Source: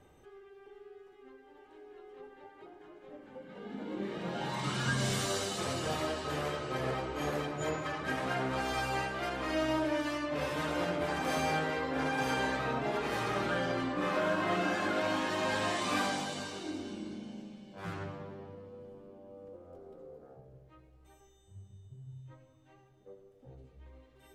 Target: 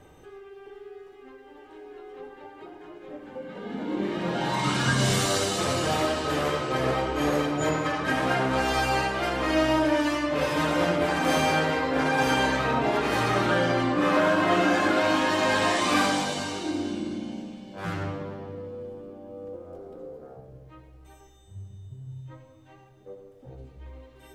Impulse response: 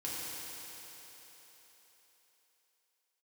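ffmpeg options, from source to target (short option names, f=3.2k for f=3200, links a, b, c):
-filter_complex "[0:a]asplit=2[a][b];[1:a]atrim=start_sample=2205,atrim=end_sample=6615[c];[b][c]afir=irnorm=-1:irlink=0,volume=-5.5dB[d];[a][d]amix=inputs=2:normalize=0,volume=6dB"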